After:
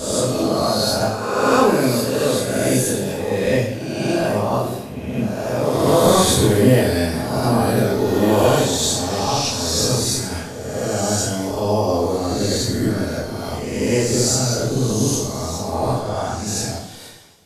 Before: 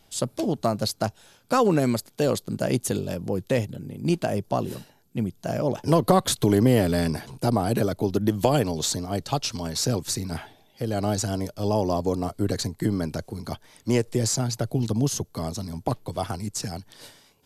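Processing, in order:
peak hold with a rise ahead of every peak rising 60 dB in 1.54 s
0:15.98–0:16.46: low-pass filter 3,500 Hz 6 dB per octave
coupled-rooms reverb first 0.57 s, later 1.9 s, from −17 dB, DRR −7.5 dB
level −5 dB

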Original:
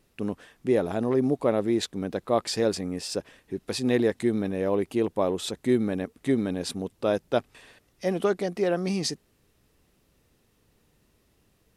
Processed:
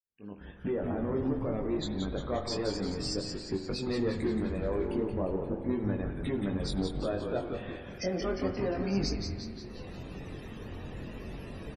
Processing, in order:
fade in at the beginning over 2.38 s
camcorder AGC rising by 39 dB per second
in parallel at −4 dB: log-companded quantiser 4 bits
on the sum: soft clipping −12 dBFS, distortion −18 dB
0:04.94–0:05.70: Gaussian smoothing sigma 5.5 samples
chorus effect 0.33 Hz, delay 20 ms, depth 2.6 ms
spectral peaks only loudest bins 64
on a send: echo with shifted repeats 176 ms, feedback 56%, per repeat −140 Hz, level −5 dB
on the sum: spring reverb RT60 2.4 s, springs 45 ms, chirp 70 ms, DRR 7.5 dB
level −8.5 dB

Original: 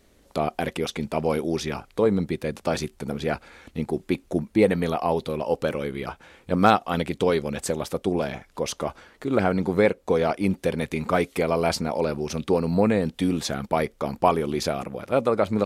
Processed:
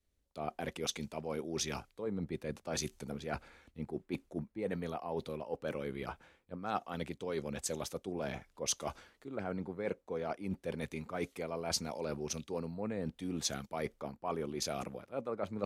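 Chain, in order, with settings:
dynamic equaliser 6,300 Hz, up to +6 dB, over −55 dBFS, Q 4.3
reversed playback
downward compressor 8 to 1, threshold −28 dBFS, peak gain reduction 16.5 dB
reversed playback
multiband upward and downward expander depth 70%
level −6.5 dB

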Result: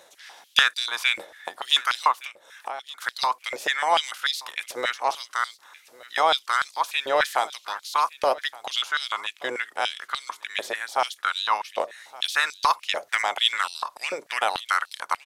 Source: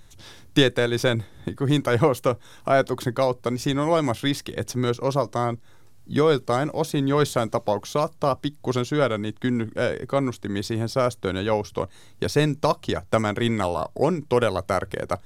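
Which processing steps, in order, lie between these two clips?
ceiling on every frequency bin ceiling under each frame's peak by 17 dB
0:02.11–0:03.02: downward compressor 8 to 1, threshold −30 dBFS, peak gain reduction 16.5 dB
single-tap delay 1,167 ms −20.5 dB
high-pass on a step sequencer 6.8 Hz 580–4,200 Hz
level −5 dB

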